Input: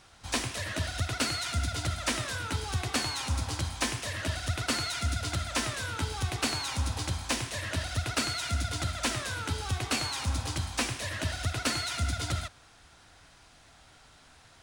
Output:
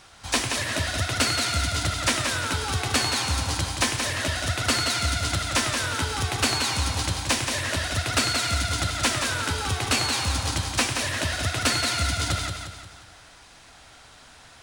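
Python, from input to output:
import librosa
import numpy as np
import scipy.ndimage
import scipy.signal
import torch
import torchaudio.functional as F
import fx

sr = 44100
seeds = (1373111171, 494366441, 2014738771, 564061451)

y = fx.low_shelf(x, sr, hz=370.0, db=-4.0)
y = fx.echo_feedback(y, sr, ms=176, feedback_pct=45, wet_db=-6.0)
y = F.gain(torch.from_numpy(y), 7.0).numpy()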